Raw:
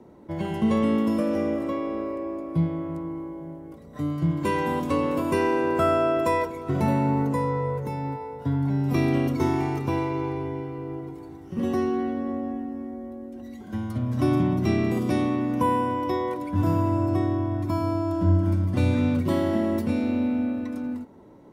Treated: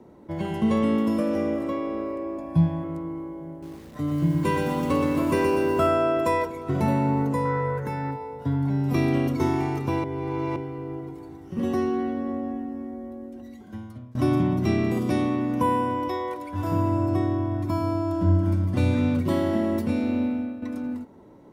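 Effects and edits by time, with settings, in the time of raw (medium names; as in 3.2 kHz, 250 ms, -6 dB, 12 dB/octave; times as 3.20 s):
2.38–2.84 s: comb 1.2 ms, depth 92%
3.50–5.87 s: bit-crushed delay 122 ms, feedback 55%, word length 8-bit, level -4.5 dB
7.45–8.11 s: peaking EQ 1.6 kHz +14 dB 0.59 oct
10.04–10.56 s: reverse
13.25–14.15 s: fade out, to -24 dB
16.08–16.72 s: peaking EQ 170 Hz -13 dB 1.5 oct
20.22–20.62 s: fade out, to -9.5 dB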